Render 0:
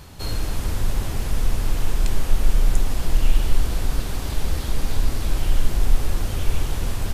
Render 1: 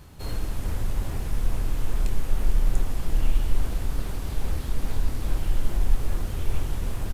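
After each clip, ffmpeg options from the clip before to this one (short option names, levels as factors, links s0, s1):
-filter_complex "[0:a]equalizer=f=4700:t=o:w=1.6:g=-3.5,asplit=2[s0][s1];[s1]adelay=26,volume=0.266[s2];[s0][s2]amix=inputs=2:normalize=0,asplit=2[s3][s4];[s4]acrusher=samples=29:mix=1:aa=0.000001:lfo=1:lforange=46.4:lforate=2.4,volume=0.398[s5];[s3][s5]amix=inputs=2:normalize=0,volume=0.447"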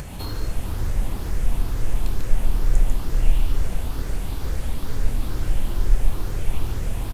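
-filter_complex "[0:a]afftfilt=real='re*pow(10,7/40*sin(2*PI*(0.53*log(max(b,1)*sr/1024/100)/log(2)-(2.2)*(pts-256)/sr)))':imag='im*pow(10,7/40*sin(2*PI*(0.53*log(max(b,1)*sr/1024/100)/log(2)-(2.2)*(pts-256)/sr)))':win_size=1024:overlap=0.75,asplit=2[s0][s1];[s1]aecho=0:1:145:0.668[s2];[s0][s2]amix=inputs=2:normalize=0,acompressor=mode=upward:threshold=0.0708:ratio=2.5"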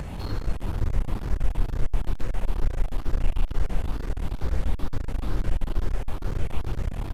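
-filter_complex "[0:a]lowpass=f=2300:p=1,acrossover=split=350[s0][s1];[s0]alimiter=limit=0.224:level=0:latency=1:release=248[s2];[s2][s1]amix=inputs=2:normalize=0,aeval=exprs='clip(val(0),-1,0.0282)':c=same,volume=1.19"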